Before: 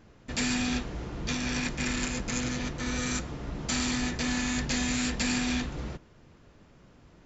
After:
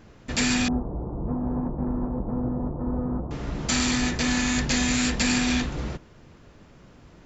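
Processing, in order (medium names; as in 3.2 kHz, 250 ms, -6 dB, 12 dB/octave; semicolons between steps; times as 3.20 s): 0.68–3.31 s: steep low-pass 1 kHz 36 dB/octave; trim +5.5 dB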